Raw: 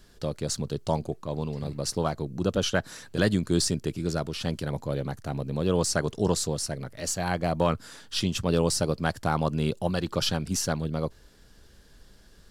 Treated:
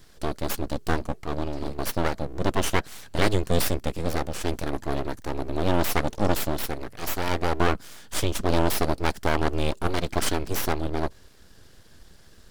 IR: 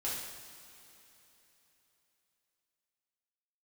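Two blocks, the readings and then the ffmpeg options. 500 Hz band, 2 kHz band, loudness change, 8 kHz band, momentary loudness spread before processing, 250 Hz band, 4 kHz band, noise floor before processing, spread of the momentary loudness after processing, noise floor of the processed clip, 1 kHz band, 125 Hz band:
+0.5 dB, +4.0 dB, +0.5 dB, -2.5 dB, 8 LU, -0.5 dB, -1.0 dB, -55 dBFS, 7 LU, -51 dBFS, +4.0 dB, -1.0 dB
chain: -af "aeval=exprs='abs(val(0))':c=same,volume=1.58"

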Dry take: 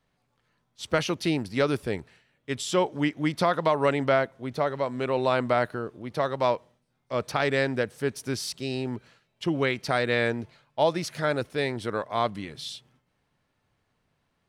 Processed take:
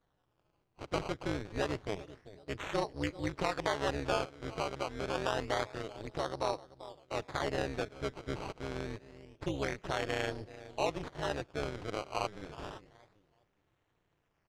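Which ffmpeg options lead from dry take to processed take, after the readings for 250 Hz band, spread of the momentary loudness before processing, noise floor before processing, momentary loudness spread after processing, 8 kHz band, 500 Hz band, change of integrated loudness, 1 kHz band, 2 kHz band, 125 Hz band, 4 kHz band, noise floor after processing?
-10.5 dB, 11 LU, -74 dBFS, 11 LU, -9.0 dB, -10.0 dB, -9.5 dB, -8.5 dB, -9.5 dB, -8.5 dB, -8.0 dB, -78 dBFS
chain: -filter_complex "[0:a]asplit=2[s0][s1];[s1]adelay=389,lowpass=f=1000:p=1,volume=0.126,asplit=2[s2][s3];[s3]adelay=389,lowpass=f=1000:p=1,volume=0.29,asplit=2[s4][s5];[s5]adelay=389,lowpass=f=1000:p=1,volume=0.29[s6];[s2][s4][s6]amix=inputs=3:normalize=0[s7];[s0][s7]amix=inputs=2:normalize=0,acrusher=samples=17:mix=1:aa=0.000001:lfo=1:lforange=17:lforate=0.27,tremolo=f=210:d=0.974,lowpass=5300,equalizer=f=220:w=5.4:g=-10.5,asplit=2[s8][s9];[s9]acompressor=threshold=0.00891:ratio=6,volume=1.41[s10];[s8][s10]amix=inputs=2:normalize=0,volume=0.447"

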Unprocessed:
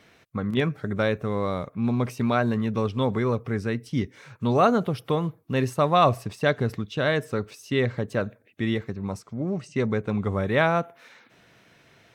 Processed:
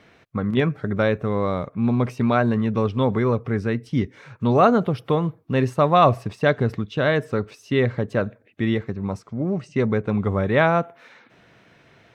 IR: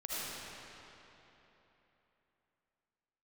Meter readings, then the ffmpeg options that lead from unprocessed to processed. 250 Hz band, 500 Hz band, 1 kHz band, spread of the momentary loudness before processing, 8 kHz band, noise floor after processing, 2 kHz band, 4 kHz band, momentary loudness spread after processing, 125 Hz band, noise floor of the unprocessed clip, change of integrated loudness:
+4.0 dB, +4.0 dB, +3.5 dB, 10 LU, no reading, -56 dBFS, +2.5 dB, 0.0 dB, 10 LU, +4.0 dB, -59 dBFS, +3.5 dB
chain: -af "lowpass=f=2800:p=1,volume=1.58"

